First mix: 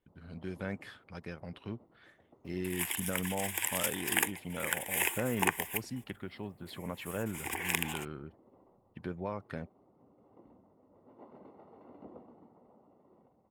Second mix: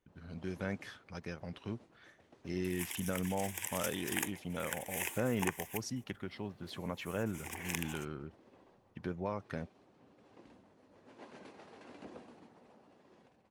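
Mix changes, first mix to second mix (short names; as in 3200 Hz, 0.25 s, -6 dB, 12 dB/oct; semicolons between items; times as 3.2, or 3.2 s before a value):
first sound: remove polynomial smoothing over 65 samples; second sound -8.0 dB; master: add bell 6000 Hz +12.5 dB 0.28 oct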